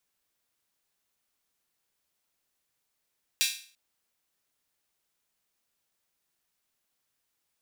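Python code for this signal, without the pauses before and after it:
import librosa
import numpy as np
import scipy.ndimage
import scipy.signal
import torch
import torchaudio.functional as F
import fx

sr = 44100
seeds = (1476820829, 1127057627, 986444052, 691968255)

y = fx.drum_hat_open(sr, length_s=0.34, from_hz=2900.0, decay_s=0.44)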